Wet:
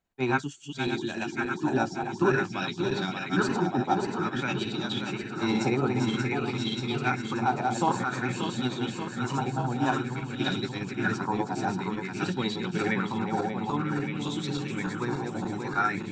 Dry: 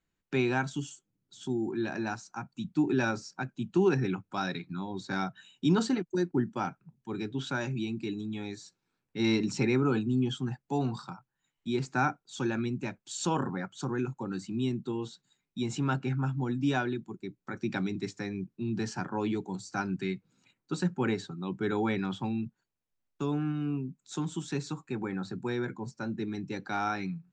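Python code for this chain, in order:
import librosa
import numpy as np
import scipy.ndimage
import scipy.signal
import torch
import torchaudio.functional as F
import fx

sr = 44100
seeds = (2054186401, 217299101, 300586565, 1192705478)

y = fx.reverse_delay_fb(x, sr, ms=494, feedback_pct=81, wet_db=-4)
y = fx.stretch_grains(y, sr, factor=0.59, grain_ms=117.0)
y = fx.bell_lfo(y, sr, hz=0.52, low_hz=700.0, high_hz=3800.0, db=12)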